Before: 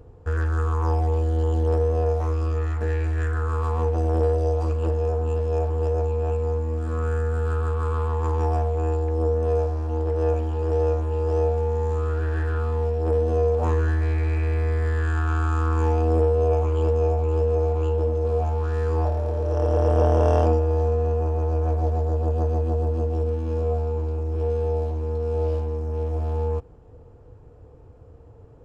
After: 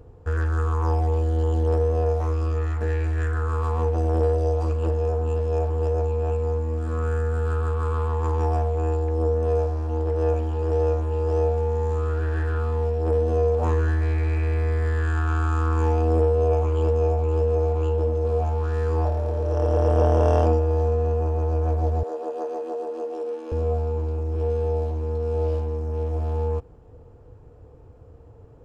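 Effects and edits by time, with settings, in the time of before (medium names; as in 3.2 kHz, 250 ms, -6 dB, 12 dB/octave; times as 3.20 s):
22.03–23.52 s: high-pass 340 Hz 24 dB/octave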